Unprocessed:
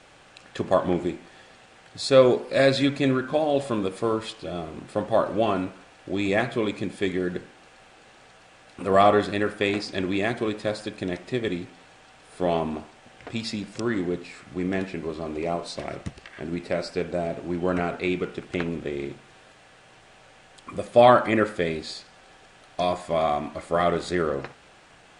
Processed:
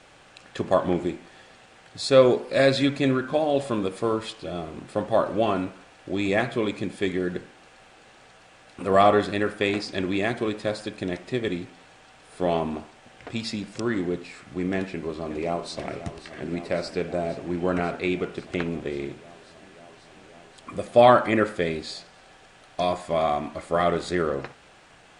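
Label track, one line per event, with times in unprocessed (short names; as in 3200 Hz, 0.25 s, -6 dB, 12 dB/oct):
14.760000	15.840000	echo throw 0.54 s, feedback 85%, level -13 dB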